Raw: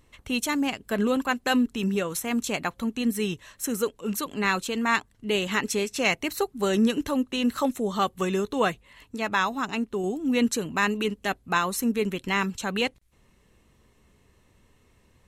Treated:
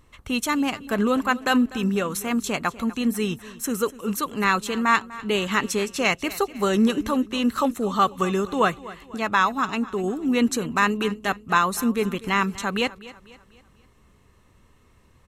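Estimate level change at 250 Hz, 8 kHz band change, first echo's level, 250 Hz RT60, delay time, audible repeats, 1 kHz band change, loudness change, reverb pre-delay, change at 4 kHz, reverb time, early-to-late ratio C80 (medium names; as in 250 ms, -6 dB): +2.5 dB, +1.0 dB, -18.0 dB, no reverb, 247 ms, 3, +5.5 dB, +3.0 dB, no reverb, +1.5 dB, no reverb, no reverb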